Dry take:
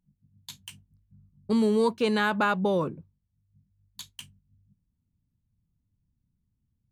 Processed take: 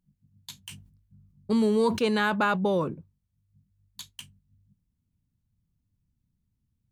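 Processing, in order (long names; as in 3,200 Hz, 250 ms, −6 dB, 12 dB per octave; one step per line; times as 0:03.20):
0:00.55–0:02.94: level that may fall only so fast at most 100 dB per second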